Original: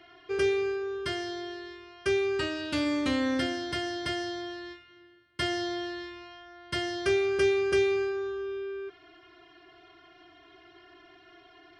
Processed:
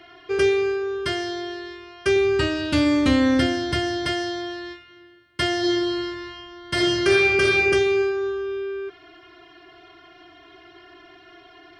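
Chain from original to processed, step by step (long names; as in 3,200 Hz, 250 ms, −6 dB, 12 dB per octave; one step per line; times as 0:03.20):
0:02.16–0:04.06: low-shelf EQ 170 Hz +10.5 dB
0:05.58–0:07.59: thrown reverb, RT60 1.2 s, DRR −3 dB
level +7 dB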